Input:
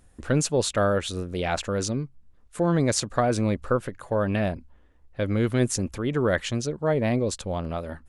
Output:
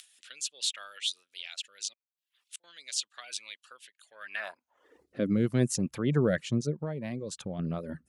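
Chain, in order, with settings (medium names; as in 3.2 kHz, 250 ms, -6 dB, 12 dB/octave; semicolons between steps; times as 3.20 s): 1.93–2.64 s: inverted gate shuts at -28 dBFS, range -33 dB; reverb removal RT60 0.54 s; rotary cabinet horn 0.8 Hz; upward compressor, threshold -31 dBFS; high-pass sweep 3.2 kHz -> 150 Hz, 4.02–5.40 s; 6.75–7.59 s: compression 6:1, threshold -30 dBFS, peak gain reduction 11 dB; trim -2.5 dB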